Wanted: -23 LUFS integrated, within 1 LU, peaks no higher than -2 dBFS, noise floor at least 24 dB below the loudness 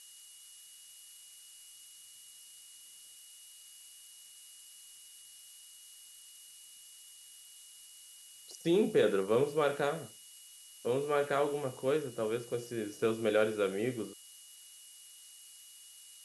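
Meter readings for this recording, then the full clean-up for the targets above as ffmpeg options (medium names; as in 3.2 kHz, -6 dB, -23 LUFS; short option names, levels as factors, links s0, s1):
steady tone 2.9 kHz; tone level -59 dBFS; noise floor -55 dBFS; noise floor target -57 dBFS; loudness -32.5 LUFS; peak level -15.5 dBFS; loudness target -23.0 LUFS
-> -af "bandreject=f=2900:w=30"
-af "afftdn=nr=6:nf=-55"
-af "volume=2.99"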